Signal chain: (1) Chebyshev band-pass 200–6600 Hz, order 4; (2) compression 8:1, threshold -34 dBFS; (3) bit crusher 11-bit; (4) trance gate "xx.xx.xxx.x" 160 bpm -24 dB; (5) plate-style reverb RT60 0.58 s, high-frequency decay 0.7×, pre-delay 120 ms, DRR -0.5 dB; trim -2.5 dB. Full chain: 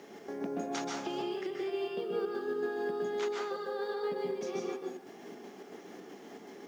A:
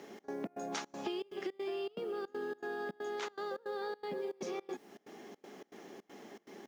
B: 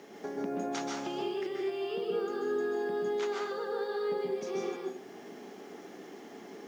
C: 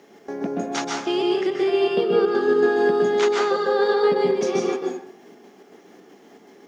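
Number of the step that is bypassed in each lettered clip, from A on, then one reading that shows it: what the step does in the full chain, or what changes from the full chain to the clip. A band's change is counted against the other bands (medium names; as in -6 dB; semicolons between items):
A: 5, crest factor change +3.0 dB; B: 4, crest factor change -1.5 dB; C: 2, mean gain reduction 9.5 dB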